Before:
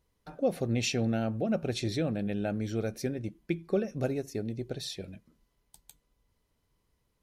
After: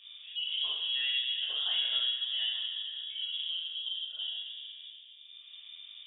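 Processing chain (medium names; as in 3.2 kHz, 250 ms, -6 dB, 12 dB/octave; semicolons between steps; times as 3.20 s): bass shelf 450 Hz -10 dB; hum notches 60/120/180/240 Hz; slow attack 769 ms; level-controlled noise filter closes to 600 Hz, open at -26 dBFS; peak limiter -36 dBFS, peak gain reduction 7.5 dB; reverberation RT60 1.7 s, pre-delay 3 ms, DRR -9 dB; frequency inversion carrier 3 kHz; wide varispeed 1.19×; three bands compressed up and down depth 70%; trim +4 dB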